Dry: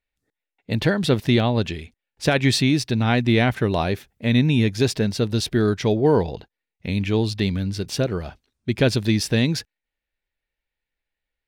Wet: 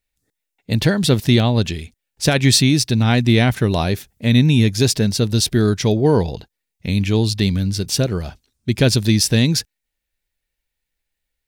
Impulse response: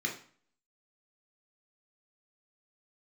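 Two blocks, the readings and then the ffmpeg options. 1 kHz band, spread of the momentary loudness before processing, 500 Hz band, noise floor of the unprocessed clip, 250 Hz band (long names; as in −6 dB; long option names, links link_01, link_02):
+1.0 dB, 11 LU, +1.5 dB, below −85 dBFS, +3.5 dB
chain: -af "bass=frequency=250:gain=5,treble=frequency=4000:gain=11,volume=1dB"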